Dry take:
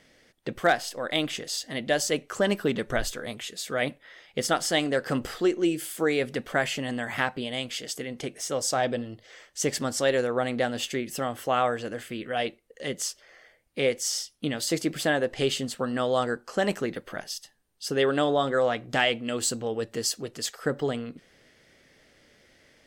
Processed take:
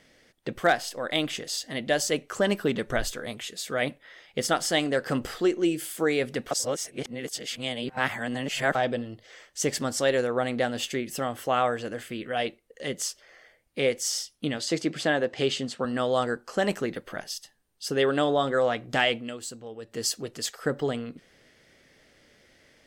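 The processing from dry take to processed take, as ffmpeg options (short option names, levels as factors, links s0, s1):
-filter_complex "[0:a]asettb=1/sr,asplit=3[s0][s1][s2];[s0]atrim=end=14.584[s3];[s1]atrim=start=14.58:end=15.85,asetpts=PTS-STARTPTS,afade=t=in:d=0.004:c=qsin,afade=t=out:st=1.266:d=0.004:c=qsin,highpass=110,lowpass=6800[s4];[s2]atrim=start=15.846[s5];[s3][s4]acrossfade=d=0.004:c1=hsin:c2=qsin[s6];[s6][s5]acrossfade=d=0.004:c1=qsin:c2=hsin,asplit=5[s7][s8][s9][s10][s11];[s7]atrim=end=6.512[s12];[s8]atrim=start=6.508:end=8.752,asetpts=PTS-STARTPTS,areverse[s13];[s9]atrim=start=8.748:end=19.37,asetpts=PTS-STARTPTS,afade=t=out:st=10.412:d=0.21:silence=0.298538[s14];[s10]atrim=start=19.37:end=19.84,asetpts=PTS-STARTPTS,volume=0.299[s15];[s11]atrim=start=19.84,asetpts=PTS-STARTPTS,afade=t=in:d=0.21:silence=0.298538[s16];[s12][s13]acrossfade=d=0.004:c1=hsin:c2=hsin[s17];[s14][s15][s16]concat=n=3:v=0:a=1[s18];[s17][s18]acrossfade=d=0.004:c1=hsin:c2=hsin"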